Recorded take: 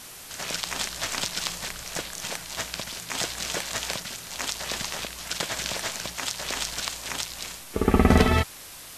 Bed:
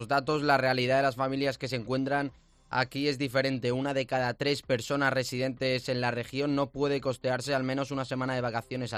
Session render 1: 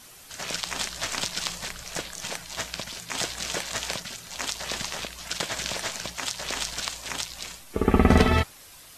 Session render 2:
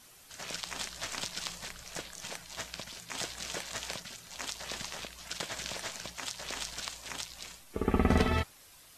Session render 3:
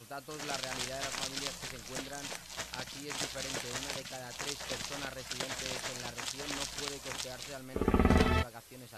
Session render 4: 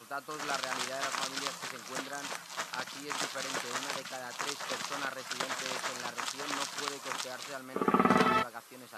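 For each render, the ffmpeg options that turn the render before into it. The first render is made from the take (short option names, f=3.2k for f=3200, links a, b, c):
-af "afftdn=nr=7:nf=-43"
-af "volume=-8dB"
-filter_complex "[1:a]volume=-17dB[a];[0:a][a]amix=inputs=2:normalize=0"
-af "highpass=f=160:w=0.5412,highpass=f=160:w=1.3066,equalizer=f=1.2k:t=o:w=0.9:g=10"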